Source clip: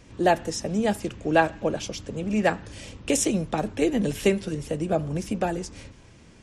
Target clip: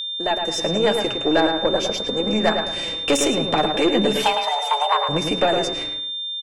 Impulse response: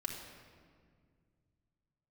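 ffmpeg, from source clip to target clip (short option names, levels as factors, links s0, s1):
-filter_complex "[0:a]acompressor=threshold=0.0562:ratio=2,bass=f=250:g=-14,treble=f=4000:g=-9,dynaudnorm=f=130:g=7:m=3.76,agate=range=0.0708:threshold=0.0141:ratio=16:detection=peak,flanger=delay=3.6:depth=4:regen=32:speed=0.45:shape=triangular,aeval=exprs='(tanh(7.94*val(0)+0.25)-tanh(0.25))/7.94':c=same,asettb=1/sr,asplit=3[s0][s1][s2];[s0]atrim=end=1.364[s3];[s1]atrim=start=1.36:end=2.52,asetpts=PTS-STARTPTS,afade=t=in:d=0.004:c=qsin,afade=t=out:st=1.156:d=0.004:c=qsin,equalizer=f=2800:t=o:w=0.76:g=-8[s4];[s2]atrim=start=2.516[s5];[s3][s4]acrossfade=d=0.004:c1=hsin:c2=qsin[s6];[s6][s5]acrossfade=d=0.004:c1=qsin:c2=hsin,asettb=1/sr,asplit=3[s7][s8][s9];[s7]atrim=end=4.224[s10];[s8]atrim=start=4.22:end=5.09,asetpts=PTS-STARTPTS,afade=t=in:d=0.004:c=qsin,afade=t=out:st=0.866:d=0.004:c=qsin,afreqshift=420[s11];[s9]atrim=start=5.086[s12];[s10][s11]acrossfade=d=0.004:c1=hsin:c2=qsin[s13];[s13][s12]acrossfade=d=0.004:c1=qsin:c2=hsin,asplit=2[s14][s15];[s15]adelay=108,lowpass=f=2400:p=1,volume=0.562,asplit=2[s16][s17];[s17]adelay=108,lowpass=f=2400:p=1,volume=0.32,asplit=2[s18][s19];[s19]adelay=108,lowpass=f=2400:p=1,volume=0.32,asplit=2[s20][s21];[s21]adelay=108,lowpass=f=2400:p=1,volume=0.32[s22];[s16][s18][s20][s22]amix=inputs=4:normalize=0[s23];[s14][s23]amix=inputs=2:normalize=0,aeval=exprs='val(0)+0.0251*sin(2*PI*3600*n/s)':c=same,volume=2.11"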